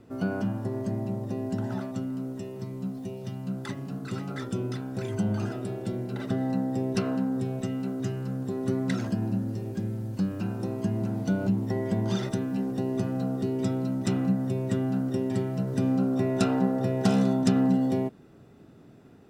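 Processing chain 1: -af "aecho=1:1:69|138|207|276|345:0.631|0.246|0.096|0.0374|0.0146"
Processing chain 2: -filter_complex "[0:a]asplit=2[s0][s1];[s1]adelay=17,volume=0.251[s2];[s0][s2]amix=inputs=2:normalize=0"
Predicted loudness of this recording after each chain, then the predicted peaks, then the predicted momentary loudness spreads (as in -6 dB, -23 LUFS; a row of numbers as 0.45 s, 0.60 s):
-25.0 LUFS, -29.5 LUFS; -8.0 dBFS, -10.0 dBFS; 11 LU, 9 LU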